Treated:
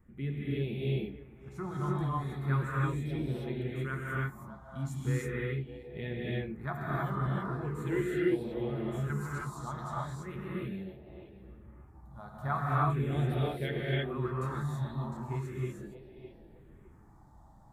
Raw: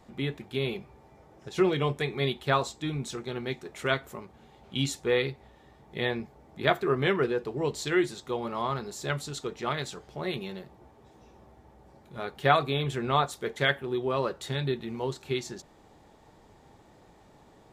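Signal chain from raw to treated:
parametric band 5,000 Hz −9.5 dB 2.7 octaves
feedback echo with a band-pass in the loop 609 ms, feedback 41%, band-pass 820 Hz, level −11 dB
all-pass phaser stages 4, 0.39 Hz, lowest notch 410–1,200 Hz
low-shelf EQ 120 Hz +7.5 dB
reverb whose tail is shaped and stops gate 350 ms rising, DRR −5.5 dB
level −7.5 dB

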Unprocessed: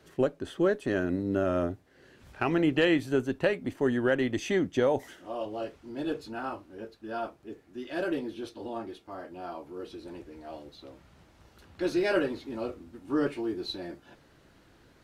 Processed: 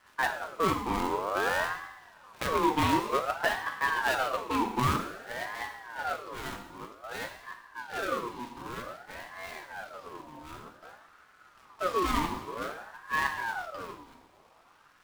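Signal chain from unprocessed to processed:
gap after every zero crossing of 0.25 ms
coupled-rooms reverb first 0.89 s, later 2.9 s, from −20 dB, DRR 3.5 dB
ring modulator whose carrier an LFO sweeps 1,000 Hz, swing 40%, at 0.53 Hz

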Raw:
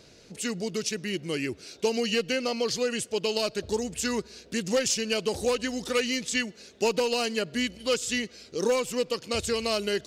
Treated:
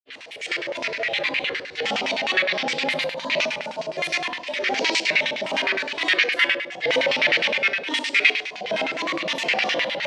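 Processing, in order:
ring modulation 260 Hz
granular cloud, pitch spread up and down by 7 semitones
phase shifter 0.77 Hz, delay 3.5 ms, feedback 24%
reversed playback
upward compression, threshold −32 dBFS
reversed playback
rectangular room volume 290 cubic metres, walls mixed, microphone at 3.2 metres
auto-filter band-pass square 9.7 Hz 560–2,100 Hz
meter weighting curve D
level +3.5 dB

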